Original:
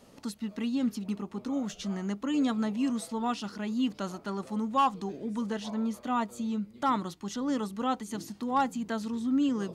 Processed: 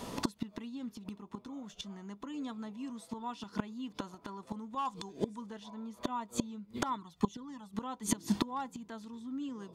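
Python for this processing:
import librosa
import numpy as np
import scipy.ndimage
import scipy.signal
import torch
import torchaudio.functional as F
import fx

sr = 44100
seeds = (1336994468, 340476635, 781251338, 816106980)

y = fx.peak_eq(x, sr, hz=7600.0, db=10.0, octaves=1.6, at=(4.85, 5.36))
y = fx.gate_flip(y, sr, shuts_db=-29.0, range_db=-26)
y = fx.notch(y, sr, hz=570.0, q=18.0)
y = fx.small_body(y, sr, hz=(990.0, 3500.0), ring_ms=45, db=12)
y = fx.env_flanger(y, sr, rest_ms=2.4, full_db=-41.0, at=(6.95, 7.72), fade=0.02)
y = y * librosa.db_to_amplitude(13.0)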